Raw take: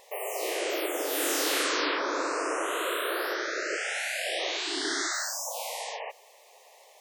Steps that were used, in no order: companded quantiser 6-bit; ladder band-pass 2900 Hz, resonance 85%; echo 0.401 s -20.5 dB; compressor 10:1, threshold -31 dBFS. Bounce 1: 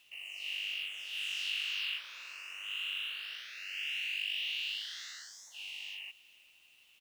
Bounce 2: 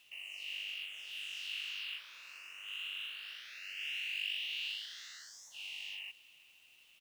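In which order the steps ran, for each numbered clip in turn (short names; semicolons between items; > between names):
ladder band-pass > compressor > echo > companded quantiser; compressor > ladder band-pass > companded quantiser > echo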